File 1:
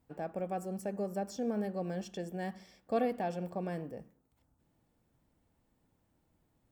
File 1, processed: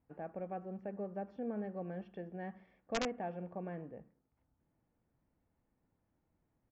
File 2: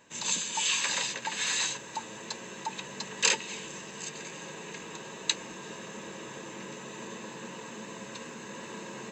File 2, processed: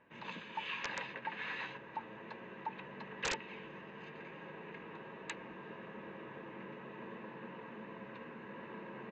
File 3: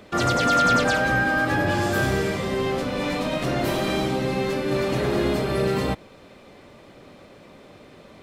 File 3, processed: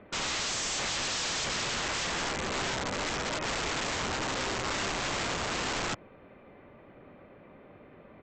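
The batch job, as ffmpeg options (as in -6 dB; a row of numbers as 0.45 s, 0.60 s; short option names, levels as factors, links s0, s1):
-af "lowpass=f=2400:w=0.5412,lowpass=f=2400:w=1.3066,aresample=16000,aeval=exprs='(mod(12.6*val(0)+1,2)-1)/12.6':c=same,aresample=44100,volume=0.531"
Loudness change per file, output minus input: -5.5 LU, -12.0 LU, -8.0 LU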